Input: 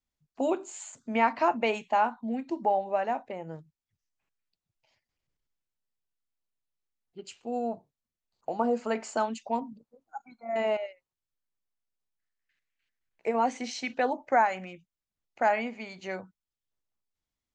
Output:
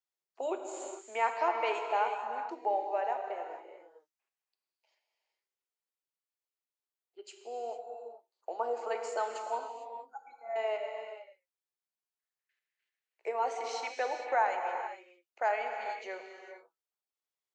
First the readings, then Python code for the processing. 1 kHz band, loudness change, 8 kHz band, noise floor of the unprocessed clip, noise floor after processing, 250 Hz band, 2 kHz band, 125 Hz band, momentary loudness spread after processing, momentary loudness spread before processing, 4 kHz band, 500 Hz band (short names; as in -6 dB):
-3.5 dB, -5.0 dB, -4.5 dB, under -85 dBFS, under -85 dBFS, -17.5 dB, -4.0 dB, under -30 dB, 18 LU, 17 LU, -4.5 dB, -4.5 dB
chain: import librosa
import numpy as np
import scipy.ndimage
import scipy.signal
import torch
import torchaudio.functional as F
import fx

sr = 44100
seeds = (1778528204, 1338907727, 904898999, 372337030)

y = scipy.signal.sosfilt(scipy.signal.cheby1(4, 1.0, 380.0, 'highpass', fs=sr, output='sos'), x)
y = fx.rev_gated(y, sr, seeds[0], gate_ms=480, shape='flat', drr_db=4.0)
y = F.gain(torch.from_numpy(y), -5.0).numpy()